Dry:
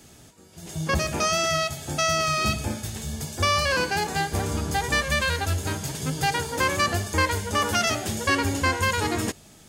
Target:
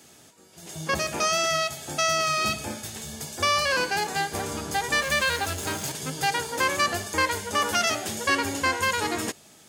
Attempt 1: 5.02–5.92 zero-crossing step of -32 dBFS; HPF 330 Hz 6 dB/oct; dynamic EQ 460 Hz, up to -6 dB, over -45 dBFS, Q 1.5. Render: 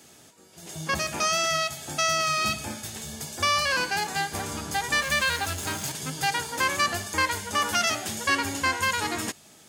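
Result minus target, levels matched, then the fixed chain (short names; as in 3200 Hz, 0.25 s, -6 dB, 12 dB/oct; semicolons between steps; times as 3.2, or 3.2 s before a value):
500 Hz band -3.5 dB
5.02–5.92 zero-crossing step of -32 dBFS; HPF 330 Hz 6 dB/oct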